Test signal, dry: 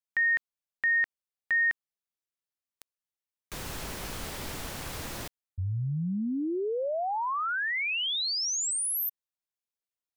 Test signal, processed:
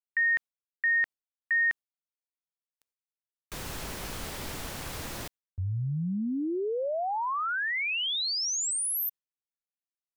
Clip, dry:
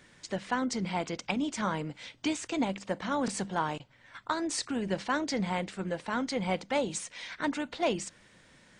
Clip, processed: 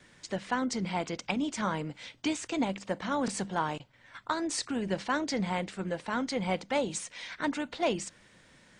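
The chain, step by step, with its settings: gate with hold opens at -51 dBFS, closes at -55 dBFS, hold 45 ms, range -20 dB

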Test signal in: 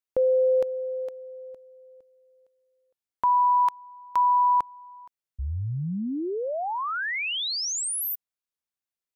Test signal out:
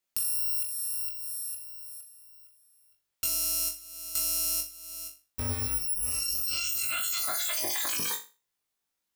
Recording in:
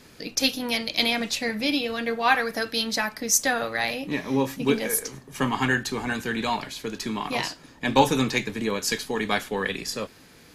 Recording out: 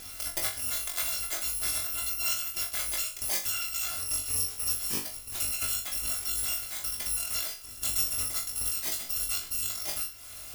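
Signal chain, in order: bit-reversed sample order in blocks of 256 samples; compression 3:1, threshold -42 dBFS; flutter echo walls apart 3.5 m, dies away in 0.31 s; trim +6.5 dB

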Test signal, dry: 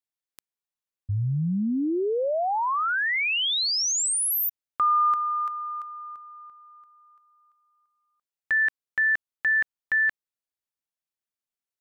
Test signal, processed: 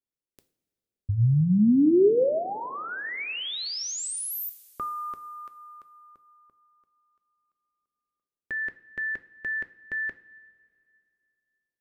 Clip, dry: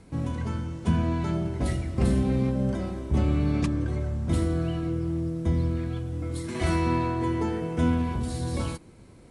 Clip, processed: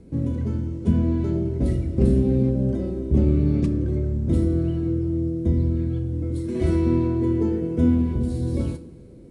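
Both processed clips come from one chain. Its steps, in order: resonant low shelf 630 Hz +12 dB, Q 1.5; two-slope reverb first 0.39 s, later 2.6 s, from -17 dB, DRR 8.5 dB; trim -8 dB

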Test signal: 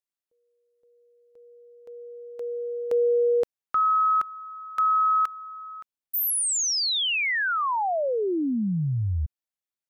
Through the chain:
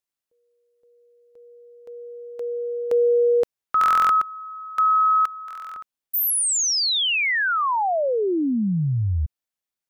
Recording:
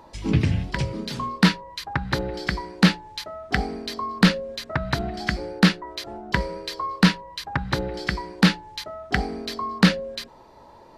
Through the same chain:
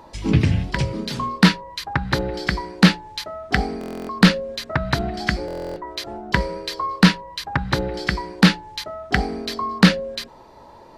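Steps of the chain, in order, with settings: buffer glitch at 3.79/5.46 s, samples 1024, times 12; trim +3.5 dB

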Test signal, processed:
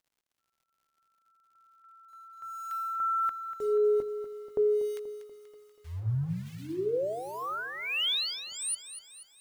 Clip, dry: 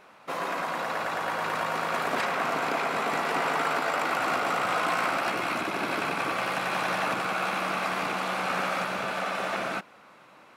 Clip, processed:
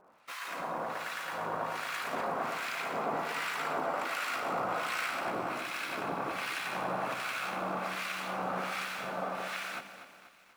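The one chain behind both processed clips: hum notches 50/100/150/200/250/300/350/400/450 Hz; in parallel at -9 dB: bit crusher 6-bit; on the sum: harmonic tremolo 1.3 Hz, depth 100%, crossover 1.3 kHz; crackle 120 per s -57 dBFS; bit-crushed delay 241 ms, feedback 55%, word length 9-bit, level -11.5 dB; trim -4.5 dB

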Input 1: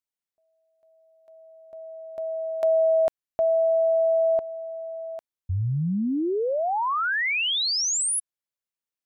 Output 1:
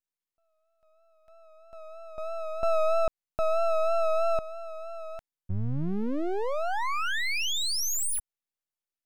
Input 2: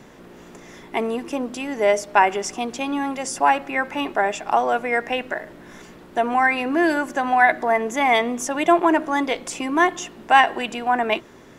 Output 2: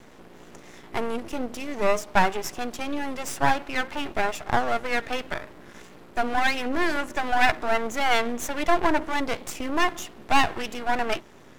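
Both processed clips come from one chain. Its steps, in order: half-wave rectifier; vibrato 3.1 Hz 45 cents

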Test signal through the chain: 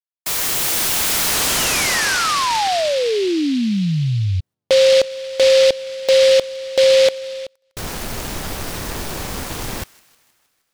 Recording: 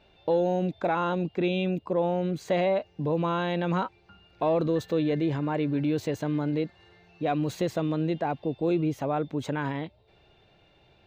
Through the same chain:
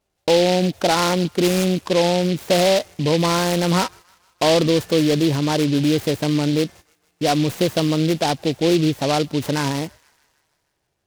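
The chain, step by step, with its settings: gate -46 dBFS, range -23 dB; feedback echo behind a high-pass 156 ms, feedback 61%, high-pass 1.9 kHz, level -20 dB; delay time shaken by noise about 3.3 kHz, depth 0.091 ms; trim +8.5 dB

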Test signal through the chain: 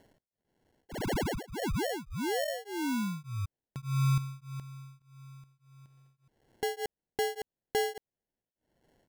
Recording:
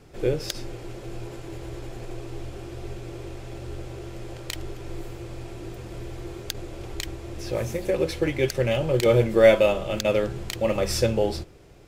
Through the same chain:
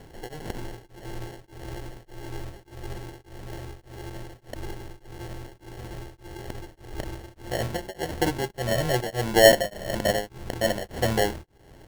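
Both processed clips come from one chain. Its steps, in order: upward compressor, threshold -42 dBFS; sample-and-hold 36×; tremolo of two beating tones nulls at 1.7 Hz

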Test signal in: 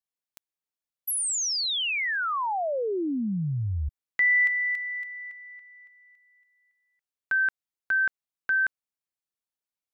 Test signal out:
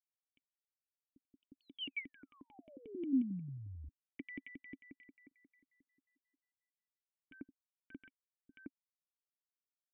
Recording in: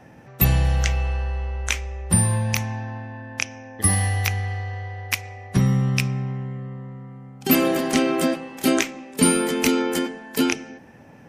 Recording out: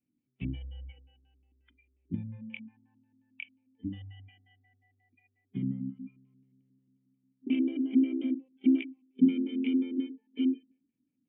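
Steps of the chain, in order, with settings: LFO low-pass square 5.6 Hz 300–2700 Hz; cascade formant filter i; spectral noise reduction 22 dB; trim -7.5 dB

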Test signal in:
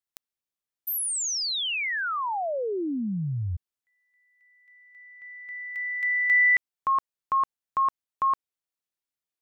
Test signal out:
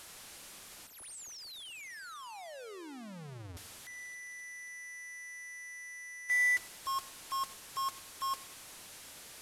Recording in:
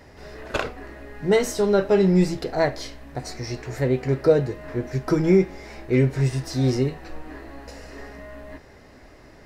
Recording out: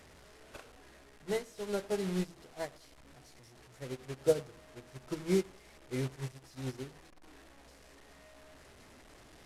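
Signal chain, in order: one-bit delta coder 64 kbps, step -20 dBFS; filtered feedback delay 98 ms, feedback 47%, low-pass 1.9 kHz, level -13 dB; upward expansion 2.5:1, over -29 dBFS; trim -9 dB

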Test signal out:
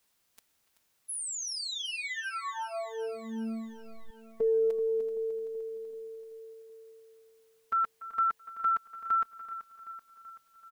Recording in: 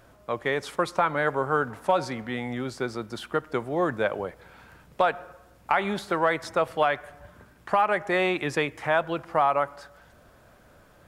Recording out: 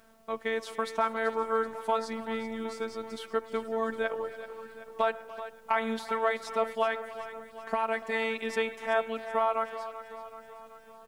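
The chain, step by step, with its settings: robot voice 224 Hz; speakerphone echo 290 ms, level -15 dB; added noise white -71 dBFS; on a send: feedback delay 382 ms, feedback 59%, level -13 dB; on the sum: trim -2.5 dB

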